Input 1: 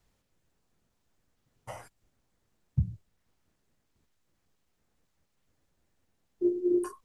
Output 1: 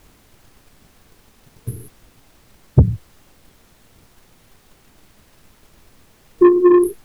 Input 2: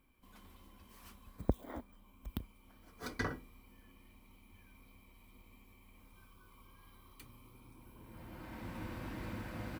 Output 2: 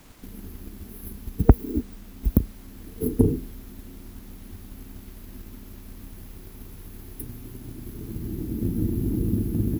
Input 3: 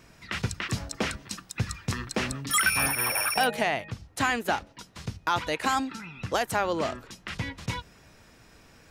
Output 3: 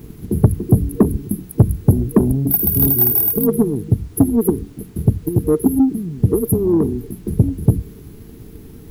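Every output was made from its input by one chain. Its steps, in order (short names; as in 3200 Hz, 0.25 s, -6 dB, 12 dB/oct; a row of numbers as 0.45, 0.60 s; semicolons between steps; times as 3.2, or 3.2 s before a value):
FFT band-reject 470–9900 Hz; added noise pink -73 dBFS; soft clip -27 dBFS; transient shaper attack +5 dB, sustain +1 dB; normalise peaks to -3 dBFS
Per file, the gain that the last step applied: +19.0, +19.0, +19.0 dB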